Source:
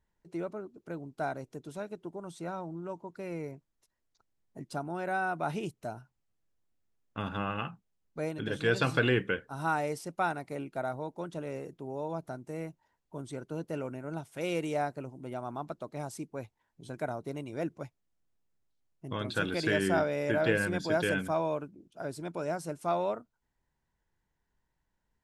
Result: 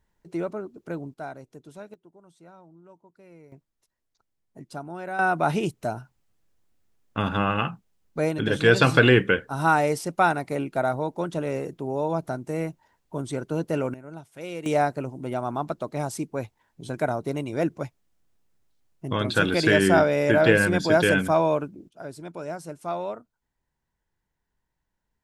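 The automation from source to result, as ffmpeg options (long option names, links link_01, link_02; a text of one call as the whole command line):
ffmpeg -i in.wav -af "asetnsamples=nb_out_samples=441:pad=0,asendcmd='1.14 volume volume -2.5dB;1.94 volume volume -12dB;3.52 volume volume 0dB;5.19 volume volume 10dB;13.94 volume volume -2.5dB;14.66 volume volume 9.5dB;21.89 volume volume 0dB',volume=7dB" out.wav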